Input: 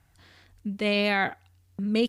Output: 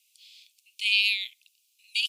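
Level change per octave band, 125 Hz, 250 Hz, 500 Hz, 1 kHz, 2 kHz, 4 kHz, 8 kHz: under -40 dB, under -40 dB, under -40 dB, under -40 dB, +1.5 dB, +8.0 dB, n/a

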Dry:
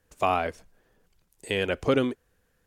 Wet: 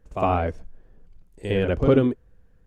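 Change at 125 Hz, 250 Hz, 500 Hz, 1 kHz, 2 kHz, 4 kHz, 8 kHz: +11.0 dB, +6.5 dB, +5.0 dB, +1.5 dB, -2.5 dB, -5.0 dB, n/a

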